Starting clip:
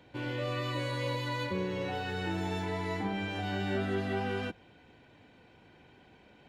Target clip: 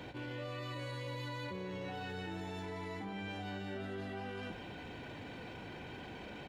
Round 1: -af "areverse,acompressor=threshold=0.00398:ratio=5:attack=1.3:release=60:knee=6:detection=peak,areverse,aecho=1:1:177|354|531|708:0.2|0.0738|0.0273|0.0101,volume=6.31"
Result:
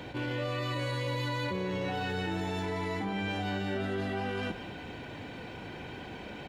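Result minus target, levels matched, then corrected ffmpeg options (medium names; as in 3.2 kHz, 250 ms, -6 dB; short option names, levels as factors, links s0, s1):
compression: peak gain reduction -9 dB
-af "areverse,acompressor=threshold=0.00106:ratio=5:attack=1.3:release=60:knee=6:detection=peak,areverse,aecho=1:1:177|354|531|708:0.2|0.0738|0.0273|0.0101,volume=6.31"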